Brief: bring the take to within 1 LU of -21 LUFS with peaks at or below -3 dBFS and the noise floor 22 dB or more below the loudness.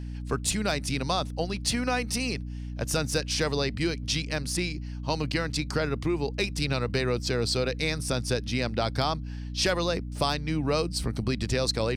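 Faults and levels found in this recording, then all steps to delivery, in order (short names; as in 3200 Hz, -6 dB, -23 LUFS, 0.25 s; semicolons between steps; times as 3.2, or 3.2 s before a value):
hum 60 Hz; harmonics up to 300 Hz; hum level -33 dBFS; loudness -28.5 LUFS; peak -12.0 dBFS; loudness target -21.0 LUFS
-> notches 60/120/180/240/300 Hz; gain +7.5 dB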